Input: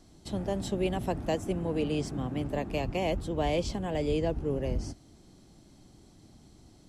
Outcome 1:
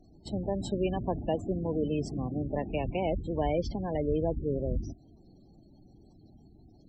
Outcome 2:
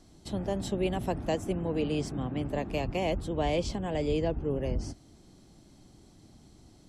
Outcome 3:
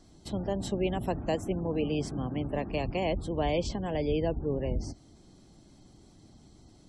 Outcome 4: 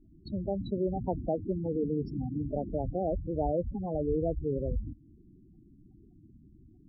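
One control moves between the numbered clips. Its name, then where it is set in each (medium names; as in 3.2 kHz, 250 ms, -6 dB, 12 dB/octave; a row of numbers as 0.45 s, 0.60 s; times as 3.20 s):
spectral gate, under each frame's peak: -20 dB, -50 dB, -35 dB, -10 dB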